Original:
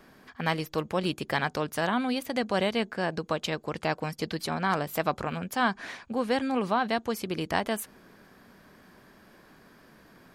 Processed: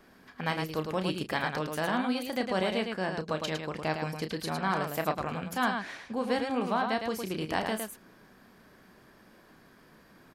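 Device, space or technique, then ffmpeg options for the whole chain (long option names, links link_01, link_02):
slapback doubling: -filter_complex "[0:a]asplit=3[link_01][link_02][link_03];[link_02]adelay=32,volume=-9dB[link_04];[link_03]adelay=108,volume=-5.5dB[link_05];[link_01][link_04][link_05]amix=inputs=3:normalize=0,volume=-3.5dB"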